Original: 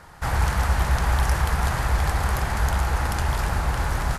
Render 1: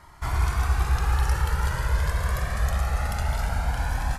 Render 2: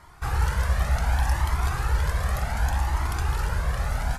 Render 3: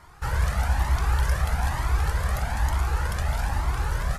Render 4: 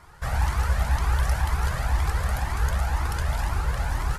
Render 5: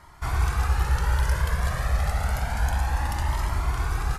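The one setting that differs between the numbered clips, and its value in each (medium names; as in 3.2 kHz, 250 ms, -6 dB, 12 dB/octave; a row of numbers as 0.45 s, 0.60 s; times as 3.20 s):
Shepard-style flanger, rate: 0.2 Hz, 0.67 Hz, 1.1 Hz, 2 Hz, 0.29 Hz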